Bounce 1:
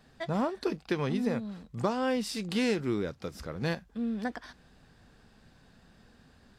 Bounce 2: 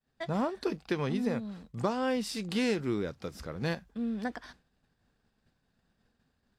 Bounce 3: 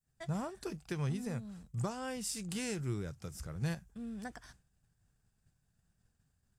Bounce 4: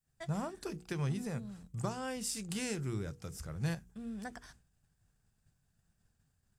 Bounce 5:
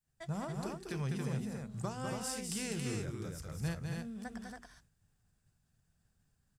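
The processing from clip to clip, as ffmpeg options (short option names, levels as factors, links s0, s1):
-af "agate=range=0.0224:threshold=0.00398:ratio=3:detection=peak,volume=0.891"
-af "equalizer=f=125:t=o:w=1:g=5,equalizer=f=250:t=o:w=1:g=-11,equalizer=f=500:t=o:w=1:g=-9,equalizer=f=1000:t=o:w=1:g=-7,equalizer=f=2000:t=o:w=1:g=-6,equalizer=f=4000:t=o:w=1:g=-11,equalizer=f=8000:t=o:w=1:g=8,volume=1.12"
-af "bandreject=f=60:t=h:w=6,bandreject=f=120:t=h:w=6,bandreject=f=180:t=h:w=6,bandreject=f=240:t=h:w=6,bandreject=f=300:t=h:w=6,bandreject=f=360:t=h:w=6,bandreject=f=420:t=h:w=6,bandreject=f=480:t=h:w=6,volume=1.12"
-af "aecho=1:1:201.2|277:0.562|0.631,volume=0.75"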